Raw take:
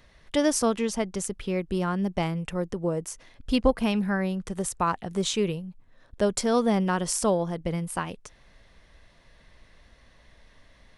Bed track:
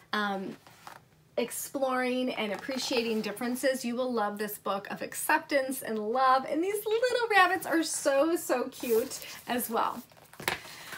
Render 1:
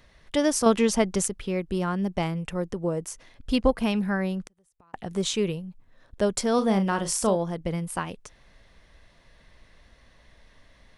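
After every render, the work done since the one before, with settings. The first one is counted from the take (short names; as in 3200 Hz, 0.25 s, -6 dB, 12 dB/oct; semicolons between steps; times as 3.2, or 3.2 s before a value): 0.66–1.28 gain +5.5 dB; 4.43–4.94 flipped gate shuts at -23 dBFS, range -36 dB; 6.55–7.36 doubler 36 ms -9 dB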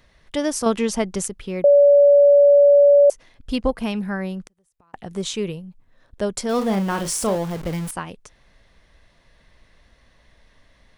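1.64–3.1 bleep 572 Hz -8.5 dBFS; 6.49–7.91 zero-crossing step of -28.5 dBFS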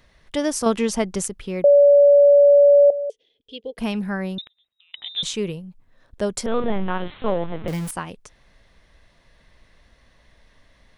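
2.9–3.78 double band-pass 1200 Hz, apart 2.9 oct; 4.38–5.23 inverted band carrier 3800 Hz; 6.46–7.68 LPC vocoder at 8 kHz pitch kept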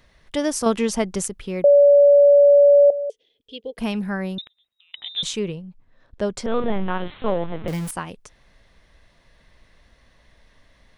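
5.39–6.5 air absorption 78 m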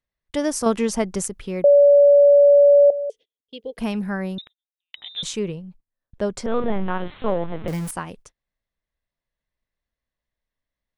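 gate -44 dBFS, range -31 dB; dynamic EQ 3300 Hz, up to -4 dB, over -44 dBFS, Q 1.4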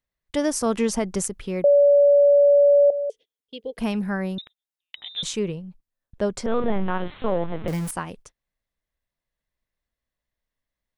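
limiter -11.5 dBFS, peak gain reduction 5 dB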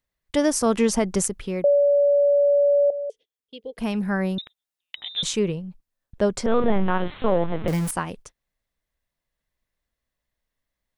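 vocal rider within 3 dB 0.5 s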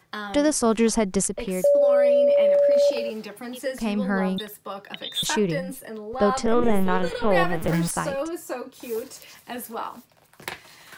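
add bed track -3 dB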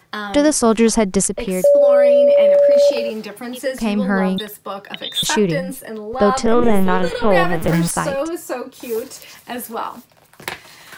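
gain +6.5 dB; limiter -2 dBFS, peak gain reduction 2 dB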